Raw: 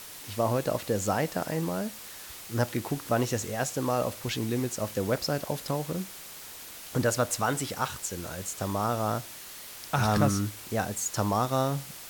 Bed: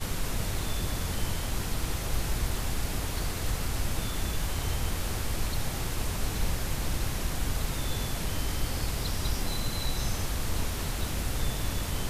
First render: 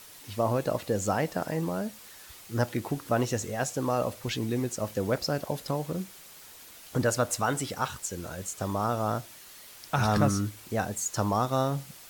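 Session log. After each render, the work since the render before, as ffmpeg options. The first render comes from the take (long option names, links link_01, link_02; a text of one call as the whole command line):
ffmpeg -i in.wav -af "afftdn=noise_reduction=6:noise_floor=-44" out.wav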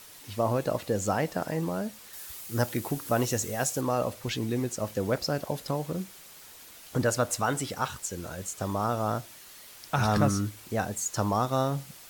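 ffmpeg -i in.wav -filter_complex "[0:a]asettb=1/sr,asplit=3[link_01][link_02][link_03];[link_01]atrim=end=2.134[link_04];[link_02]atrim=start=2.13:end=3.81,asetpts=PTS-STARTPTS,afade=type=in:duration=0.004:curve=qsin,afade=type=out:start_time=1.676:duration=0.004:curve=qsin,highshelf=frequency=7300:gain=10.5[link_05];[link_03]atrim=start=3.806[link_06];[link_04][link_05]acrossfade=duration=0.004:curve1=hsin:curve2=qsin[link_07];[link_07][link_06]acrossfade=duration=0.004:curve1=qsin:curve2=hsin" out.wav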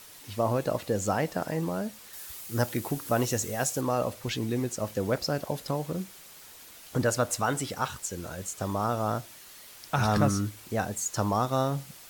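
ffmpeg -i in.wav -af anull out.wav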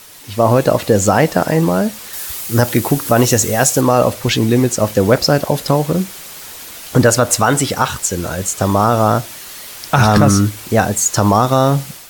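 ffmpeg -i in.wav -af "dynaudnorm=framelen=270:gausssize=3:maxgain=7dB,alimiter=level_in=9.5dB:limit=-1dB:release=50:level=0:latency=1" out.wav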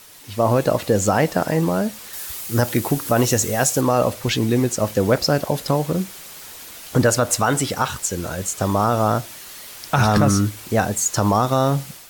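ffmpeg -i in.wav -af "volume=-5.5dB" out.wav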